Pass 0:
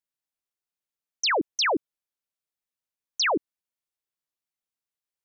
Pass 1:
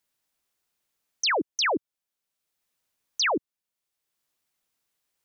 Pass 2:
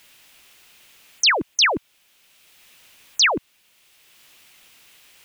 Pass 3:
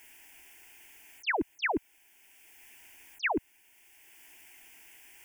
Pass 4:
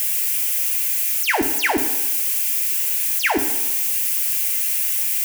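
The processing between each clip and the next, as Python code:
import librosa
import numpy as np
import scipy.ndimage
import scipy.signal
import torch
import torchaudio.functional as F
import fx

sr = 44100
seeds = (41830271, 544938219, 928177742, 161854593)

y1 = fx.band_squash(x, sr, depth_pct=40)
y2 = fx.peak_eq(y1, sr, hz=2700.0, db=10.0, octaves=1.1)
y2 = fx.spectral_comp(y2, sr, ratio=2.0)
y3 = fx.auto_swell(y2, sr, attack_ms=220.0)
y3 = fx.fixed_phaser(y3, sr, hz=810.0, stages=8)
y4 = y3 + 0.5 * 10.0 ** (-28.0 / 20.0) * np.diff(np.sign(y3), prepend=np.sign(y3[:1]))
y4 = fx.rev_fdn(y4, sr, rt60_s=1.1, lf_ratio=0.85, hf_ratio=0.8, size_ms=34.0, drr_db=4.5)
y4 = y4 * 10.0 ** (9.0 / 20.0)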